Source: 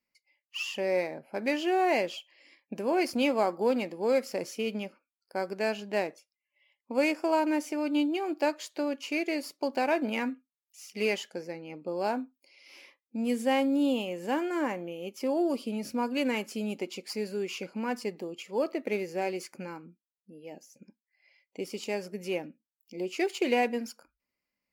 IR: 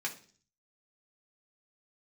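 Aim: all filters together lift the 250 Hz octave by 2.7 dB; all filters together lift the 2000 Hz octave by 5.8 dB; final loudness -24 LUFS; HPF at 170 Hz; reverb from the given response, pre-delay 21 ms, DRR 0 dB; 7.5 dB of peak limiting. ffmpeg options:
-filter_complex "[0:a]highpass=170,equalizer=f=250:t=o:g=4,equalizer=f=2k:t=o:g=7,alimiter=limit=-18dB:level=0:latency=1,asplit=2[a][b];[1:a]atrim=start_sample=2205,adelay=21[c];[b][c]afir=irnorm=-1:irlink=0,volume=-3.5dB[d];[a][d]amix=inputs=2:normalize=0,volume=4dB"

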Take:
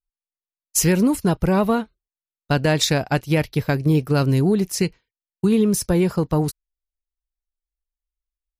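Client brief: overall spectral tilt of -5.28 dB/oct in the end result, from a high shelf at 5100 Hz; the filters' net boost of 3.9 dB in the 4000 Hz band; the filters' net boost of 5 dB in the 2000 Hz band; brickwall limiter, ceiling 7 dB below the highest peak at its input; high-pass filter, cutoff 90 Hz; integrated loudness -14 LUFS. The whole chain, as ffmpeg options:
-af "highpass=90,equalizer=f=2k:t=o:g=6,equalizer=f=4k:t=o:g=5.5,highshelf=f=5.1k:g=-5.5,volume=7dB,alimiter=limit=-3dB:level=0:latency=1"

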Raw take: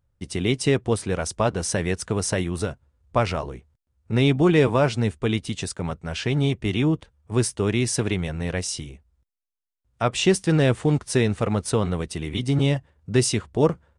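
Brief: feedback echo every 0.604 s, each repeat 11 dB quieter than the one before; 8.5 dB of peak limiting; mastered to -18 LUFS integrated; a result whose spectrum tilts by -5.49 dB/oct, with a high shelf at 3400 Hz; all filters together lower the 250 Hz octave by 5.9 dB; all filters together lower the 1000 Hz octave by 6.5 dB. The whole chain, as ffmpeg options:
-af "equalizer=f=250:t=o:g=-8.5,equalizer=f=1k:t=o:g=-7.5,highshelf=f=3.4k:g=-9,alimiter=limit=-20dB:level=0:latency=1,aecho=1:1:604|1208|1812:0.282|0.0789|0.0221,volume=12.5dB"

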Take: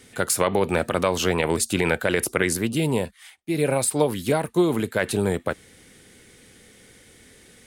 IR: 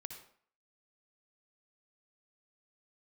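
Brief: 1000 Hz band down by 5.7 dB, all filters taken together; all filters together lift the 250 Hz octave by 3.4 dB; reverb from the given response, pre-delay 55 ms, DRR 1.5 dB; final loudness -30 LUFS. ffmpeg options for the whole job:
-filter_complex "[0:a]equalizer=f=250:t=o:g=5.5,equalizer=f=1k:t=o:g=-8,asplit=2[a][b];[1:a]atrim=start_sample=2205,adelay=55[c];[b][c]afir=irnorm=-1:irlink=0,volume=2dB[d];[a][d]amix=inputs=2:normalize=0,volume=-9.5dB"

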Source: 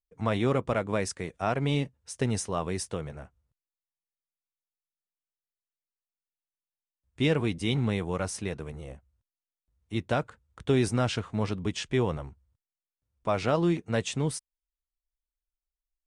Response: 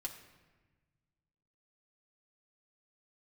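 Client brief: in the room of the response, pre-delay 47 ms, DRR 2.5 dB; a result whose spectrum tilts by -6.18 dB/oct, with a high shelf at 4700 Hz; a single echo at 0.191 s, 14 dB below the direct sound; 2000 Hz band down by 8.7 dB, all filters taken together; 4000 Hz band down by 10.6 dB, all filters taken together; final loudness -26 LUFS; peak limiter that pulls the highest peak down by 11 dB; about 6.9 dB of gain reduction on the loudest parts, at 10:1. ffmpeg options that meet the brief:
-filter_complex "[0:a]equalizer=f=2k:t=o:g=-8.5,equalizer=f=4k:t=o:g=-8,highshelf=f=4.7k:g=-6,acompressor=threshold=-27dB:ratio=10,alimiter=level_in=4.5dB:limit=-24dB:level=0:latency=1,volume=-4.5dB,aecho=1:1:191:0.2,asplit=2[a][b];[1:a]atrim=start_sample=2205,adelay=47[c];[b][c]afir=irnorm=-1:irlink=0,volume=-0.5dB[d];[a][d]amix=inputs=2:normalize=0,volume=12dB"

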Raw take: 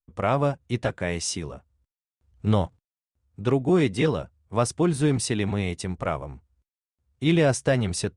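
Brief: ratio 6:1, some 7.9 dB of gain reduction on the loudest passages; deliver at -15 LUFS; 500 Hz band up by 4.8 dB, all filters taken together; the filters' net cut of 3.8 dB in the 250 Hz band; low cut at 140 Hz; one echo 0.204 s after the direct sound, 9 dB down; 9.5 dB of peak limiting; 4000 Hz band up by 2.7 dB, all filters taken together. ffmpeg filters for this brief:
-af "highpass=140,equalizer=f=250:t=o:g=-9,equalizer=f=500:t=o:g=8.5,equalizer=f=4k:t=o:g=3.5,acompressor=threshold=-21dB:ratio=6,alimiter=limit=-20dB:level=0:latency=1,aecho=1:1:204:0.355,volume=16dB"

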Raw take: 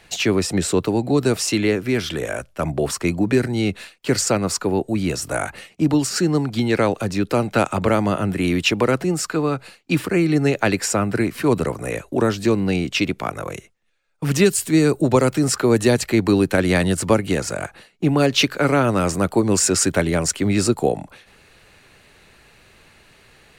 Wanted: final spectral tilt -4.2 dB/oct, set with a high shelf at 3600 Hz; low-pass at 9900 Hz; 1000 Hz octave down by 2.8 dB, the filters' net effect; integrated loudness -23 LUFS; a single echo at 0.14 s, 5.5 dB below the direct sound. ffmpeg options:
-af "lowpass=9.9k,equalizer=f=1k:t=o:g=-4.5,highshelf=f=3.6k:g=5,aecho=1:1:140:0.531,volume=-4.5dB"

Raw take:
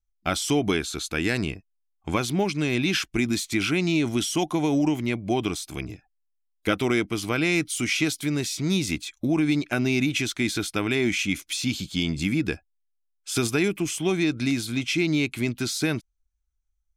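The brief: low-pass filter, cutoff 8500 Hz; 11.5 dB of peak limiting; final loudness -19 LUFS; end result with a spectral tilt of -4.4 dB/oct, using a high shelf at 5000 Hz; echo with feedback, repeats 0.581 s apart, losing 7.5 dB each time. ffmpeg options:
-af "lowpass=8.5k,highshelf=f=5k:g=-6,alimiter=limit=-23.5dB:level=0:latency=1,aecho=1:1:581|1162|1743|2324|2905:0.422|0.177|0.0744|0.0312|0.0131,volume=13.5dB"

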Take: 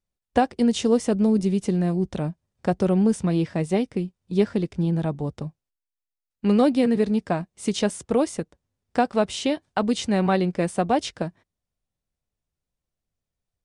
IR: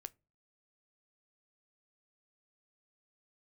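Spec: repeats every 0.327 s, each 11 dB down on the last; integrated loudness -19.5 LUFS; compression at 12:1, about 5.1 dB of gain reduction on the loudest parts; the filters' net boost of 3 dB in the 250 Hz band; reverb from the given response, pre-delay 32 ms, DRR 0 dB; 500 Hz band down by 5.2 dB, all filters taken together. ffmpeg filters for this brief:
-filter_complex "[0:a]equalizer=f=250:t=o:g=5.5,equalizer=f=500:t=o:g=-8.5,acompressor=threshold=-18dB:ratio=12,aecho=1:1:327|654|981:0.282|0.0789|0.0221,asplit=2[a][b];[1:a]atrim=start_sample=2205,adelay=32[c];[b][c]afir=irnorm=-1:irlink=0,volume=5.5dB[d];[a][d]amix=inputs=2:normalize=0,volume=3dB"

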